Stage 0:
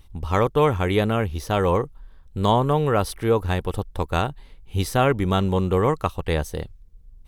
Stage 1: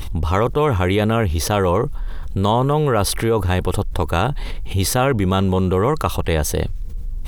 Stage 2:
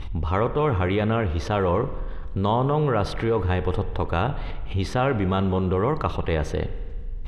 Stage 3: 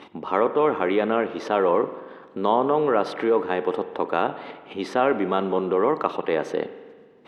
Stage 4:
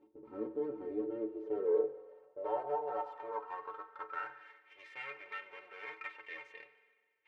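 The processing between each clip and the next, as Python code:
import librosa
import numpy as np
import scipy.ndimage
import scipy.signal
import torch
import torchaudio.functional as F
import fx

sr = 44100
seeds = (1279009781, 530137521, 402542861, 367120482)

y1 = fx.env_flatten(x, sr, amount_pct=70)
y2 = scipy.signal.sosfilt(scipy.signal.butter(2, 3100.0, 'lowpass', fs=sr, output='sos'), y1)
y2 = fx.rev_spring(y2, sr, rt60_s=1.5, pass_ms=(46,), chirp_ms=75, drr_db=11.5)
y2 = y2 * 10.0 ** (-5.0 / 20.0)
y3 = scipy.signal.sosfilt(scipy.signal.butter(4, 250.0, 'highpass', fs=sr, output='sos'), y2)
y3 = fx.high_shelf(y3, sr, hz=3000.0, db=-9.5)
y3 = y3 * 10.0 ** (3.5 / 20.0)
y4 = fx.lower_of_two(y3, sr, delay_ms=2.2)
y4 = fx.filter_sweep_bandpass(y4, sr, from_hz=290.0, to_hz=2200.0, start_s=1.0, end_s=4.94, q=4.7)
y4 = fx.stiff_resonator(y4, sr, f0_hz=66.0, decay_s=0.36, stiffness=0.03)
y4 = y4 * 10.0 ** (3.0 / 20.0)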